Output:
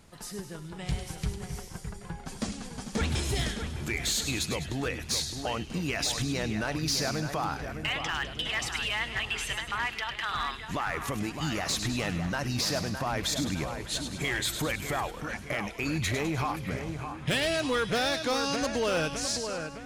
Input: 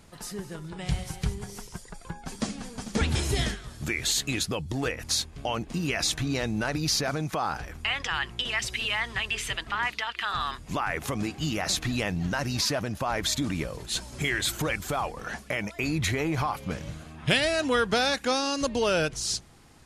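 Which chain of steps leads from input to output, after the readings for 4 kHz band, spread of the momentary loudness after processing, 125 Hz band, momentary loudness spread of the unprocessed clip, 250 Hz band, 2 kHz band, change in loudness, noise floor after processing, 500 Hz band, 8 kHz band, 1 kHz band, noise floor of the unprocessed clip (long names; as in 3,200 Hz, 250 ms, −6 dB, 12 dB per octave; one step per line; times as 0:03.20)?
−2.0 dB, 9 LU, −2.0 dB, 10 LU, −2.0 dB, −2.0 dB, −2.0 dB, −43 dBFS, −2.0 dB, −2.0 dB, −2.0 dB, −48 dBFS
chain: echo with a time of its own for lows and highs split 2,500 Hz, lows 611 ms, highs 102 ms, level −8 dB
hard clipping −20 dBFS, distortion −18 dB
level −2.5 dB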